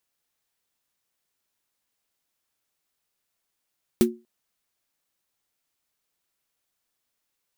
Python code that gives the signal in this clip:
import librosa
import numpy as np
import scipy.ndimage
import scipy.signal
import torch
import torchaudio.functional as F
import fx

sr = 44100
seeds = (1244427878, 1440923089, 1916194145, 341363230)

y = fx.drum_snare(sr, seeds[0], length_s=0.24, hz=230.0, second_hz=360.0, noise_db=-9.5, noise_from_hz=710.0, decay_s=0.27, noise_decay_s=0.1)